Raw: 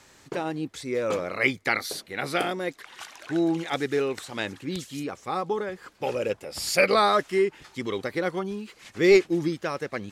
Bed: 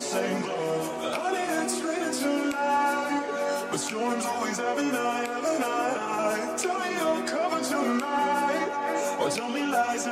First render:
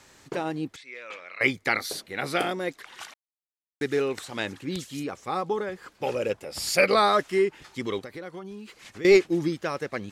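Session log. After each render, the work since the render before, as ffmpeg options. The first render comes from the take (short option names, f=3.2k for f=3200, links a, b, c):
-filter_complex "[0:a]asettb=1/sr,asplit=3[a][b][c];[a]atrim=end=0.764[d];[b]atrim=start=0.76:end=1.41,asetpts=PTS-STARTPTS,afade=t=in:d=0.004:c=qsin,afade=t=out:st=0.646:d=0.004:c=qsin,bandpass=f=2.4k:t=q:w=2[e];[c]atrim=start=1.406[f];[d][e]acrossfade=d=0.004:c1=hsin:c2=qsin[g];[g][f]acrossfade=d=0.004:c1=qsin:c2=hsin,asettb=1/sr,asplit=3[h][i][j];[h]atrim=end=7.994[k];[i]atrim=start=7.99:end=9.05,asetpts=PTS-STARTPTS,afade=t=in:d=0.004:c=qsin,afade=t=out:st=1.056:d=0.004:c=qsin,acompressor=threshold=-40dB:ratio=2.5:attack=3.2:release=140:knee=1:detection=peak[l];[j]atrim=start=9.046[m];[k][l]acrossfade=d=0.004:c1=hsin:c2=qsin[n];[n][m]acrossfade=d=0.004:c1=qsin:c2=hsin,asplit=3[o][p][q];[o]atrim=end=3.14,asetpts=PTS-STARTPTS,afade=t=out:st=3.136:d=0.004:c=hsin[r];[p]atrim=start=3.14:end=3.81,asetpts=PTS-STARTPTS,volume=0[s];[q]atrim=start=3.81,asetpts=PTS-STARTPTS,afade=t=in:d=0.004:c=hsin[t];[r][s][t]concat=n=3:v=0:a=1"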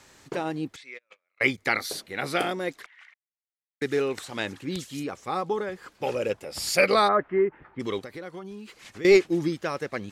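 -filter_complex "[0:a]asplit=3[a][b][c];[a]afade=t=out:st=0.97:d=0.02[d];[b]agate=range=-37dB:threshold=-37dB:ratio=16:release=100:detection=peak,afade=t=in:st=0.97:d=0.02,afade=t=out:st=1.57:d=0.02[e];[c]afade=t=in:st=1.57:d=0.02[f];[d][e][f]amix=inputs=3:normalize=0,asettb=1/sr,asplit=3[g][h][i];[g]atrim=end=2.864[j];[h]atrim=start=2.86:end=3.82,asetpts=PTS-STARTPTS,afade=t=in:d=0.004:c=qsin,afade=t=out:st=0.956:d=0.004:c=qsin,bandpass=f=2k:t=q:w=6.3[k];[i]atrim=start=3.816[l];[j][k]acrossfade=d=0.004:c1=hsin:c2=qsin[m];[m][l]acrossfade=d=0.004:c1=qsin:c2=hsin,asplit=3[n][o][p];[n]afade=t=out:st=7.07:d=0.02[q];[o]lowpass=f=1.8k:w=0.5412,lowpass=f=1.8k:w=1.3066,afade=t=in:st=7.07:d=0.02,afade=t=out:st=7.79:d=0.02[r];[p]afade=t=in:st=7.79:d=0.02[s];[q][r][s]amix=inputs=3:normalize=0"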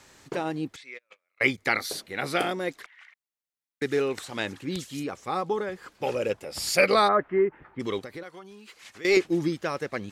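-filter_complex "[0:a]asettb=1/sr,asplit=3[a][b][c];[a]atrim=end=8.234[d];[b]atrim=start=8.23:end=9.17,asetpts=PTS-STARTPTS,afade=t=in:d=0.004:c=qsin,afade=t=out:st=0.936:d=0.004:c=qsin,lowshelf=f=430:g=-11.5[e];[c]atrim=start=9.166[f];[d][e]acrossfade=d=0.004:c1=hsin:c2=qsin[g];[g][f]acrossfade=d=0.004:c1=qsin:c2=hsin"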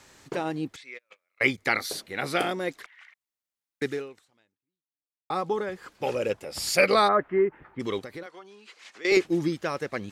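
-filter_complex "[0:a]asettb=1/sr,asplit=3[a][b][c];[a]atrim=end=8.264[d];[b]atrim=start=8.26:end=9.12,asetpts=PTS-STARTPTS,afade=t=in:d=0.004:c=qsin,afade=t=out:st=0.856:d=0.004:c=qsin,highpass=320,lowpass=7k[e];[c]atrim=start=9.116[f];[d][e]acrossfade=d=0.004:c1=hsin:c2=qsin[g];[g][f]acrossfade=d=0.004:c1=qsin:c2=hsin,asplit=2[h][i];[h]atrim=end=5.3,asetpts=PTS-STARTPTS,afade=t=out:st=3.87:d=1.43:c=exp[j];[i]atrim=start=5.3,asetpts=PTS-STARTPTS,afade=t=in:d=0.004:c=hsin[k];[j][k]concat=n=2:v=0:a=1"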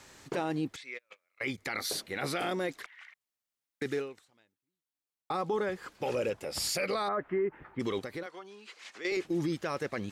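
-af "acompressor=threshold=-23dB:ratio=6,alimiter=limit=-23.5dB:level=0:latency=1:release=15"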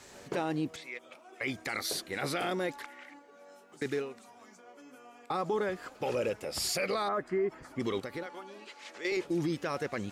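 -filter_complex "[1:a]volume=-26.5dB[a];[0:a][a]amix=inputs=2:normalize=0"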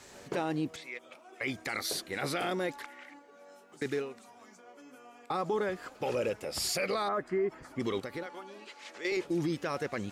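-af anull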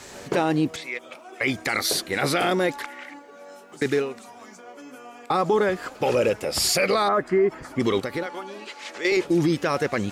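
-af "volume=10.5dB"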